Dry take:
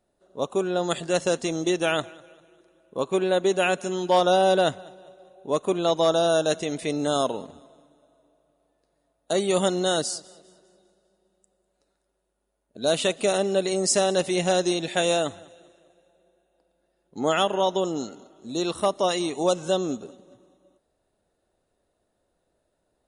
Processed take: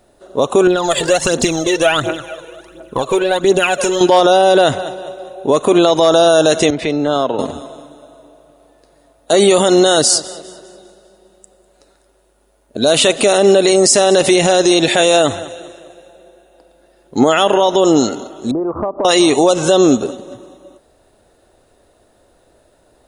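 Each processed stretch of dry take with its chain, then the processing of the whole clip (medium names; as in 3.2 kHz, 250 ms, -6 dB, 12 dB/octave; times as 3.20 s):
0.67–4.01 s: compression 8:1, threshold -31 dBFS + phaser 1.4 Hz, delay 2.3 ms, feedback 65%
6.70–7.39 s: compression 4:1, threshold -33 dBFS + low-pass 3.6 kHz + three bands expanded up and down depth 70%
18.51–19.05 s: steep low-pass 1.2 kHz + compression 12:1, threshold -35 dBFS
whole clip: peaking EQ 180 Hz -7.5 dB 0.35 oct; loudness maximiser +21.5 dB; trim -1 dB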